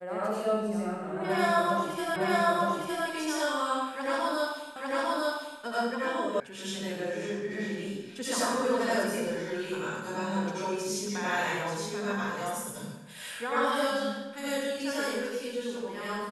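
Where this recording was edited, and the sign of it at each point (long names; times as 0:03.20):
0:02.16: the same again, the last 0.91 s
0:04.76: the same again, the last 0.85 s
0:06.40: cut off before it has died away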